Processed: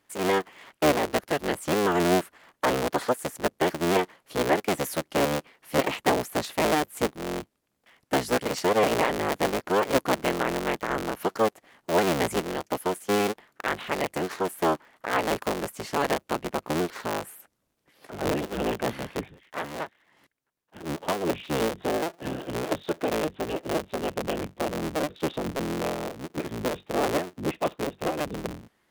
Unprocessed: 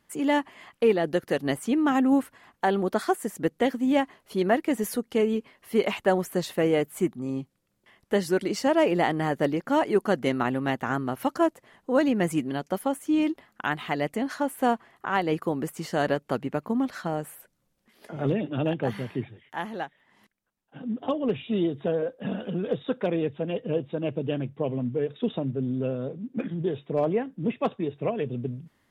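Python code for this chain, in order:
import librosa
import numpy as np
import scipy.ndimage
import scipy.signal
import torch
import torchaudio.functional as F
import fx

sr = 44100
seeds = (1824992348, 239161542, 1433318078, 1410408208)

y = fx.cycle_switch(x, sr, every=3, mode='inverted')
y = fx.low_shelf(y, sr, hz=110.0, db=-10.5)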